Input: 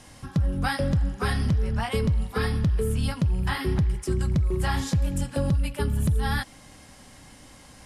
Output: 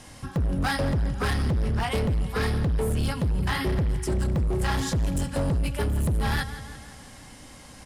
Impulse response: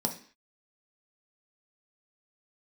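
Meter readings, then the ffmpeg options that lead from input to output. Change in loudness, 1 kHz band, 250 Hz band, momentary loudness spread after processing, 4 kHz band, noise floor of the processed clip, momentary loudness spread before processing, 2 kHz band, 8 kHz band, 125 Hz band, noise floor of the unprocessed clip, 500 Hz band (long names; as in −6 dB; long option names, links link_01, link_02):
−0.5 dB, +1.0 dB, −0.5 dB, 17 LU, +1.0 dB, −46 dBFS, 3 LU, +1.0 dB, +1.5 dB, −1.0 dB, −50 dBFS, +0.5 dB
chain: -af "aecho=1:1:170|340|510|680|850:0.178|0.0996|0.0558|0.0312|0.0175,asoftclip=type=hard:threshold=-24dB,volume=2.5dB"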